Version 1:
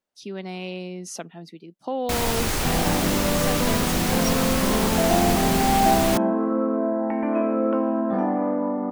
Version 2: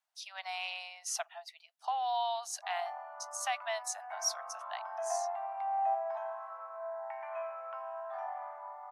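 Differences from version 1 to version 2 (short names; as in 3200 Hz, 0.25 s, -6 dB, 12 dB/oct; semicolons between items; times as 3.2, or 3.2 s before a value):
first sound: muted; second sound -11.0 dB; master: add steep high-pass 650 Hz 96 dB/oct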